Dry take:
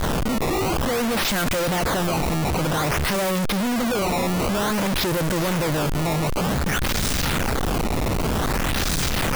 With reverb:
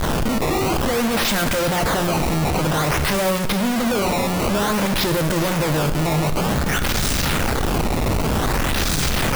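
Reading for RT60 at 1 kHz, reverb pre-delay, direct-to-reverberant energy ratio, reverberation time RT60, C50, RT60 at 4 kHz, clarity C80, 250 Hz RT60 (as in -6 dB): 1.1 s, 6 ms, 8.5 dB, 1.1 s, 11.0 dB, 1.0 s, 12.5 dB, 1.0 s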